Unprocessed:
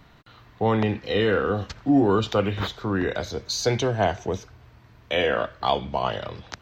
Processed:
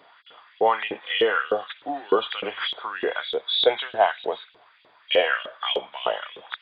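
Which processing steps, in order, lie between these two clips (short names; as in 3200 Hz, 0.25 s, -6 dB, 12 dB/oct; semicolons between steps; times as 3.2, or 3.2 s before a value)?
nonlinear frequency compression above 3200 Hz 4:1; LFO high-pass saw up 3.3 Hz 410–3400 Hz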